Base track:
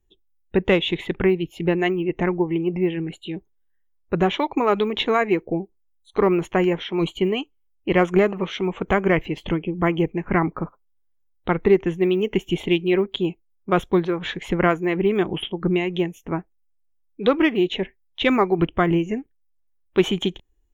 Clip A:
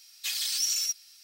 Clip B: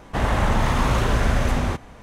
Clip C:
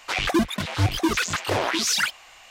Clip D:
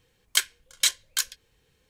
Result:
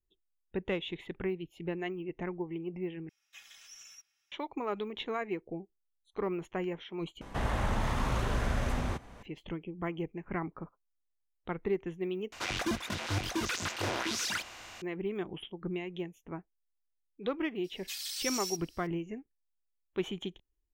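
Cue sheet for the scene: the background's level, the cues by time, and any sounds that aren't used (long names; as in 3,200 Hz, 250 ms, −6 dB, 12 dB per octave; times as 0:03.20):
base track −15.5 dB
0:03.09: overwrite with A −10 dB + moving average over 10 samples
0:07.21: overwrite with B −11 dB + multiband upward and downward compressor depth 40%
0:12.32: overwrite with C −13.5 dB + compressor on every frequency bin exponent 0.6
0:17.64: mix in A −8.5 dB
not used: D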